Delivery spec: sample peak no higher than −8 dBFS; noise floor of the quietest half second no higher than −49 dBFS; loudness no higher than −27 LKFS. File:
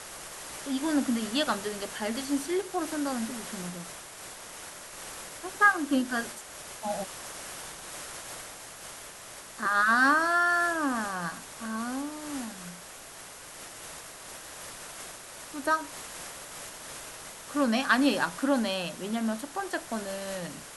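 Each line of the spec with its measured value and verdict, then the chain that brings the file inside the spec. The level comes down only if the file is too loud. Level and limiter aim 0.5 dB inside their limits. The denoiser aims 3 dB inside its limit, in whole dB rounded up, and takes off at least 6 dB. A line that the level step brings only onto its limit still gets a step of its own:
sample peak −9.5 dBFS: in spec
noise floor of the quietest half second −46 dBFS: out of spec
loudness −29.5 LKFS: in spec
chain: broadband denoise 6 dB, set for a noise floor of −46 dBFS

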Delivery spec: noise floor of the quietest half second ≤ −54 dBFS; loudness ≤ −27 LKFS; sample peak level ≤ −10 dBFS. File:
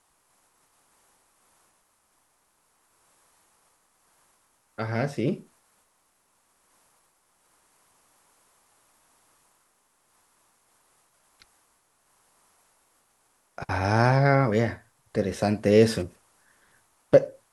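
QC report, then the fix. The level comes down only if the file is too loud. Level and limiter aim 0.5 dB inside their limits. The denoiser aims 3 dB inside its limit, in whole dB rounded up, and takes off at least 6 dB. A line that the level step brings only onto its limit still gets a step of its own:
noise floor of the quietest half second −69 dBFS: in spec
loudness −24.0 LKFS: out of spec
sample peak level −4.5 dBFS: out of spec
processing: level −3.5 dB
brickwall limiter −10.5 dBFS

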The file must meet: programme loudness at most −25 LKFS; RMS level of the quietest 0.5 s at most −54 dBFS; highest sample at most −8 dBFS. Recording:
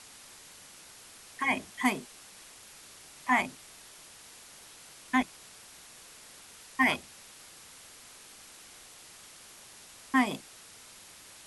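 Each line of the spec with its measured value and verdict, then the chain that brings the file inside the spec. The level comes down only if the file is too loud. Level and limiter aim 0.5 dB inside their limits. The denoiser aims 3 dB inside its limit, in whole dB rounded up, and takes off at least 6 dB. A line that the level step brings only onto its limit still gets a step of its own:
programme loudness −30.0 LKFS: in spec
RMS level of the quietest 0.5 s −52 dBFS: out of spec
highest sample −12.0 dBFS: in spec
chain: broadband denoise 6 dB, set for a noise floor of −52 dBFS

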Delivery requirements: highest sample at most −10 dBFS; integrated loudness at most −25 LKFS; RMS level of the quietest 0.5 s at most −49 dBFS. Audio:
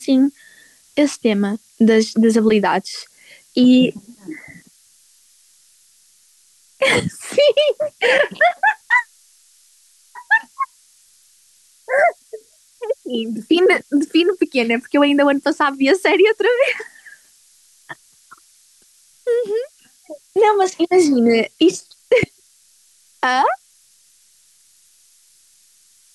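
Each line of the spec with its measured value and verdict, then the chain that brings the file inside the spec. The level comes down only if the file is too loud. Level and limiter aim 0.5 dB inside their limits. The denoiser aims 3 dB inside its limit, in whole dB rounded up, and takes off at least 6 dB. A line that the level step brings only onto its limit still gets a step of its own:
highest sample −5.0 dBFS: out of spec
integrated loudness −16.5 LKFS: out of spec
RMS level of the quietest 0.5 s −54 dBFS: in spec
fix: level −9 dB

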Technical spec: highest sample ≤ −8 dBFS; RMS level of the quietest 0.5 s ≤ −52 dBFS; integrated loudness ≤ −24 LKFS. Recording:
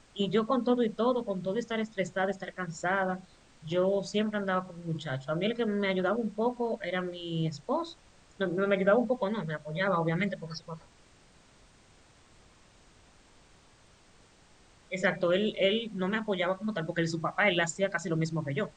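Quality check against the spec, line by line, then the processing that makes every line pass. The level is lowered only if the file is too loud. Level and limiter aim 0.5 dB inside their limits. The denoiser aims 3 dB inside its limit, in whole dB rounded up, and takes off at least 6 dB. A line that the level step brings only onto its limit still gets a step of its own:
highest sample −12.0 dBFS: in spec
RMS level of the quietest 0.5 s −60 dBFS: in spec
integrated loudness −30.5 LKFS: in spec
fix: no processing needed

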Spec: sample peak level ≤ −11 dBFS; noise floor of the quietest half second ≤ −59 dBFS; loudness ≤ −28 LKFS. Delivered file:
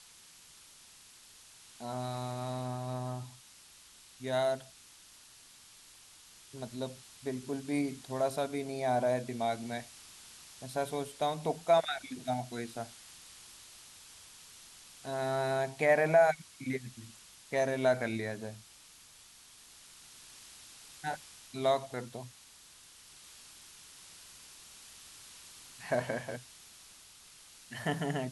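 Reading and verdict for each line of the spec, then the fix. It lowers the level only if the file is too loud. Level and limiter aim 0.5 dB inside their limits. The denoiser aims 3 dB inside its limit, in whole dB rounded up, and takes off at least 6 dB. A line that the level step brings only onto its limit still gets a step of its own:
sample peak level −14.5 dBFS: in spec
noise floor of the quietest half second −57 dBFS: out of spec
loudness −34.0 LKFS: in spec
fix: broadband denoise 6 dB, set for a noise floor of −57 dBFS

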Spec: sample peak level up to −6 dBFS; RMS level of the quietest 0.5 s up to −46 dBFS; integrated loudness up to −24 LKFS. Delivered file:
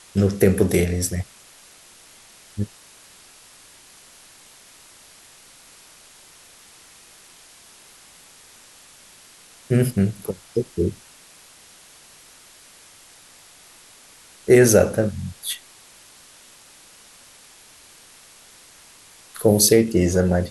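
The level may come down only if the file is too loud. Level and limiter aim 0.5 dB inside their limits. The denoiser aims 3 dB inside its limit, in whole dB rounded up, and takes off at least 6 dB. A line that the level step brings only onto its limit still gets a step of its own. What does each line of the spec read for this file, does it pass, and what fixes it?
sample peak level −3.0 dBFS: out of spec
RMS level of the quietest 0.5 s −49 dBFS: in spec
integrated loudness −20.0 LKFS: out of spec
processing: level −4.5 dB

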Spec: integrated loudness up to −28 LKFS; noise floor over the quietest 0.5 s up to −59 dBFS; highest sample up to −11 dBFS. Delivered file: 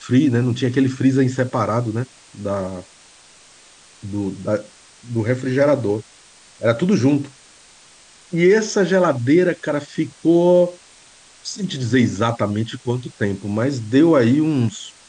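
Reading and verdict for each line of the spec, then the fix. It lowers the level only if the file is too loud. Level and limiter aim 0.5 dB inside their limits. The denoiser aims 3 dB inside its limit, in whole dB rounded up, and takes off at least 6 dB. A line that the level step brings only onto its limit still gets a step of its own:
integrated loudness −19.0 LKFS: out of spec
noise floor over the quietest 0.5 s −48 dBFS: out of spec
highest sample −5.5 dBFS: out of spec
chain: broadband denoise 6 dB, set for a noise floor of −48 dBFS
level −9.5 dB

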